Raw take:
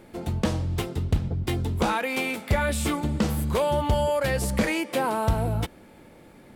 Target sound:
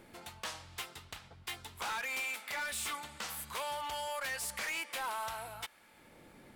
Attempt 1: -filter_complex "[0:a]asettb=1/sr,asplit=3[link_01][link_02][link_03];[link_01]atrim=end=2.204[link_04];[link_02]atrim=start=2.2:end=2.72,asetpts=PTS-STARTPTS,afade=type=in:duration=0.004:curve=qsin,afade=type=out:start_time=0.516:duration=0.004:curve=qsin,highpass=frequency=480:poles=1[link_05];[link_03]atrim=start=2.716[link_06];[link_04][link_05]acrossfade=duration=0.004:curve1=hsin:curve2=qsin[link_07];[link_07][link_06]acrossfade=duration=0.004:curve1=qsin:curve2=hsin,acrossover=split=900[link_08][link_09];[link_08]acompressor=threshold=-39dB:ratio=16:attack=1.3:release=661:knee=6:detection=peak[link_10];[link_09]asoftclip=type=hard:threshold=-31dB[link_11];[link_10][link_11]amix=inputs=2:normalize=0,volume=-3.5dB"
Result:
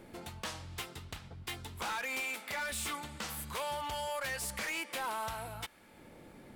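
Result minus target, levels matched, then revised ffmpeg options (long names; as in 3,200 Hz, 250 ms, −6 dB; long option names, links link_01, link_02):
downward compressor: peak gain reduction −9 dB
-filter_complex "[0:a]asettb=1/sr,asplit=3[link_01][link_02][link_03];[link_01]atrim=end=2.204[link_04];[link_02]atrim=start=2.2:end=2.72,asetpts=PTS-STARTPTS,afade=type=in:duration=0.004:curve=qsin,afade=type=out:start_time=0.516:duration=0.004:curve=qsin,highpass=frequency=480:poles=1[link_05];[link_03]atrim=start=2.716[link_06];[link_04][link_05]acrossfade=duration=0.004:curve1=hsin:curve2=qsin[link_07];[link_07][link_06]acrossfade=duration=0.004:curve1=qsin:curve2=hsin,acrossover=split=900[link_08][link_09];[link_08]acompressor=threshold=-48.5dB:ratio=16:attack=1.3:release=661:knee=6:detection=peak[link_10];[link_09]asoftclip=type=hard:threshold=-31dB[link_11];[link_10][link_11]amix=inputs=2:normalize=0,volume=-3.5dB"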